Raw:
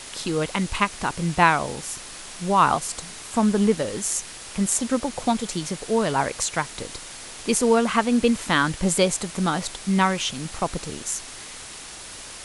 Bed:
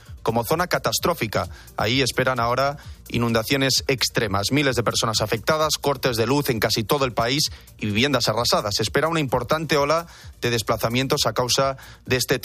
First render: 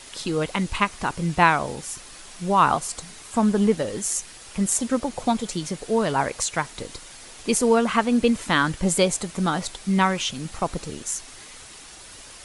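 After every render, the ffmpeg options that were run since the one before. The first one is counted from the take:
-af "afftdn=nr=6:nf=-39"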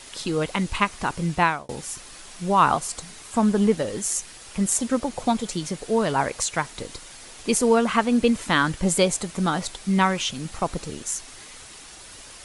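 -filter_complex "[0:a]asplit=2[a][b];[a]atrim=end=1.69,asetpts=PTS-STARTPTS,afade=t=out:st=1.18:d=0.51:c=qsin[c];[b]atrim=start=1.69,asetpts=PTS-STARTPTS,afade=t=in:d=0.004:c=hsin[d];[c][d]concat=n=2:v=0:a=1"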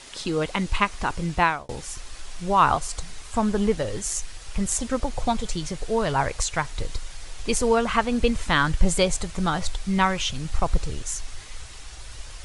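-af "lowpass=8.4k,asubboost=boost=9.5:cutoff=73"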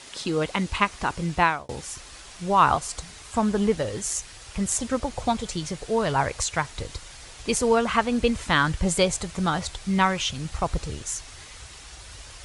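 -af "highpass=55"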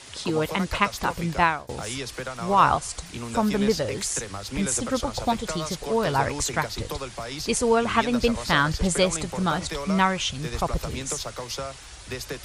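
-filter_complex "[1:a]volume=-13dB[a];[0:a][a]amix=inputs=2:normalize=0"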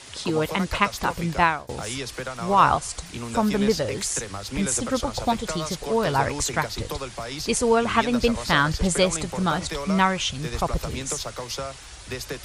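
-af "volume=1dB"

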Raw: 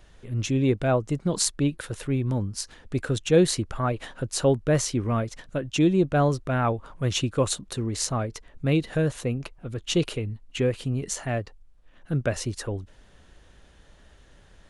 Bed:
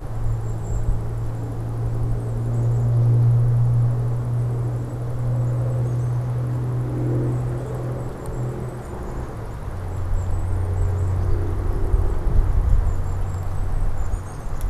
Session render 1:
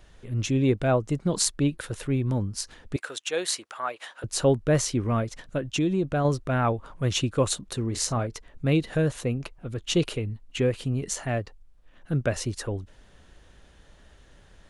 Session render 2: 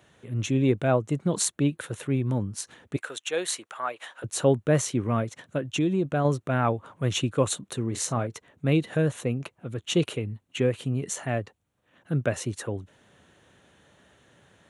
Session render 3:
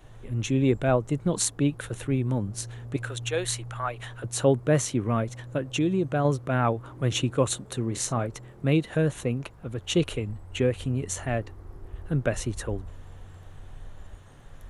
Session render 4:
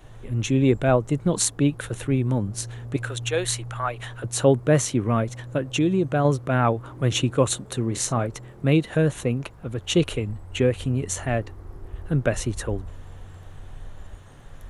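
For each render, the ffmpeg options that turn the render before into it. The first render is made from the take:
-filter_complex "[0:a]asettb=1/sr,asplit=3[a][b][c];[a]atrim=end=2.964[d];[b]atrim=start=2.96:end=4.24,asetpts=PTS-STARTPTS,afade=t=in:d=0.004:c=qsin,afade=t=out:st=1.276:d=0.004:c=qsin,highpass=790[e];[c]atrim=start=4.236[f];[d][e]acrossfade=d=0.004:c1=hsin:c2=qsin[g];[g][f]acrossfade=d=0.004:c1=qsin:c2=hsin,asettb=1/sr,asplit=3[h][i][j];[h]atrim=end=5.644[k];[i]atrim=start=5.64:end=6.25,asetpts=PTS-STARTPTS,afade=t=in:d=0.004:c=qsin,afade=t=out:st=0.606:d=0.004:c=qsin,acompressor=threshold=-22dB:ratio=2.5:attack=3.2:release=140:knee=1:detection=peak[l];[j]atrim=start=6.246[m];[k][l]acrossfade=d=0.004:c1=hsin:c2=qsin[n];[n][m]acrossfade=d=0.004:c1=qsin:c2=hsin,asettb=1/sr,asplit=3[o][p][q];[o]atrim=end=7.874[r];[p]atrim=start=7.87:end=8.27,asetpts=PTS-STARTPTS,afade=t=in:d=0.004:c=qsin,afade=t=out:st=0.396:d=0.004:c=qsin,asplit=2[s][t];[t]adelay=34,volume=-13dB[u];[s][u]amix=inputs=2:normalize=0,atrim=end_sample=17640[v];[q]atrim=start=8.266[w];[r][v]acrossfade=d=0.004:c1=hsin:c2=qsin[x];[x][w]acrossfade=d=0.004:c1=qsin:c2=hsin"
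-af "highpass=f=100:w=0.5412,highpass=f=100:w=1.3066,equalizer=f=4.9k:w=4.1:g=-10.5"
-filter_complex "[1:a]volume=-20.5dB[a];[0:a][a]amix=inputs=2:normalize=0"
-af "volume=3.5dB"

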